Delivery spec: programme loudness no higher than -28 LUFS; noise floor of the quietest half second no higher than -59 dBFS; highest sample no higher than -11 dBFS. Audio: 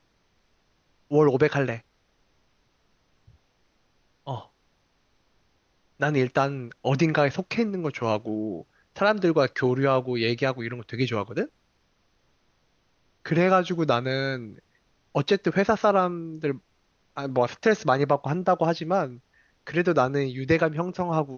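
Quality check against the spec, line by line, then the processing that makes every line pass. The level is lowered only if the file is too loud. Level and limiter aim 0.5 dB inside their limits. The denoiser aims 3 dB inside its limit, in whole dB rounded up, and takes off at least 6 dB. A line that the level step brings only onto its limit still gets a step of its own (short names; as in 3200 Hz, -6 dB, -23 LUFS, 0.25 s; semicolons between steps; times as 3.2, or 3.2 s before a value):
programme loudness -25.0 LUFS: fail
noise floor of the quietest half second -68 dBFS: OK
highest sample -7.0 dBFS: fail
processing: gain -3.5 dB; limiter -11.5 dBFS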